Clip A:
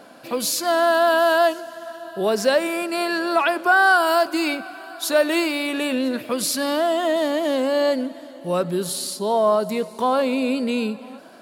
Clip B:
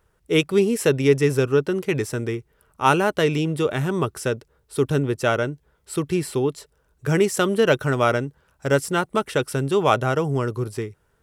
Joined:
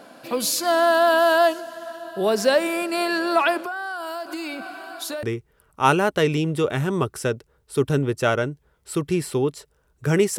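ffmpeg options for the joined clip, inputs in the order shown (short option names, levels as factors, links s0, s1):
-filter_complex "[0:a]asettb=1/sr,asplit=3[s0][s1][s2];[s0]atrim=end=3.574[s3];[s1]atrim=start=3.57:end=5.23,asetpts=PTS-STARTPTS,afade=t=in:d=0.004:c=qsin,afade=t=out:st=1.656:d=0.004:c=qsin,acompressor=threshold=0.0447:ratio=8:attack=3.2:release=140:knee=1:detection=peak[s4];[s2]atrim=start=5.226[s5];[s3][s4]acrossfade=d=0.004:c1=hsin:c2=qsin[s6];[s6][s5]acrossfade=d=0.004:c1=qsin:c2=hsin,apad=whole_dur=10.38,atrim=end=10.38,atrim=end=5.232[s7];[1:a]atrim=start=2.238:end=7.39[s8];[s7][s8]acrossfade=d=0.004:c1=hsin:c2=hsin"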